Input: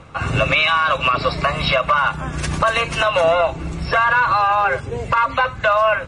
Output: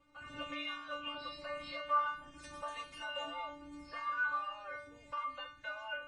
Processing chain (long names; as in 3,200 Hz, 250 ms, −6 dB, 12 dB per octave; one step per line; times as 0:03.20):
stiff-string resonator 290 Hz, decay 0.53 s, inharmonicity 0.002
level −6.5 dB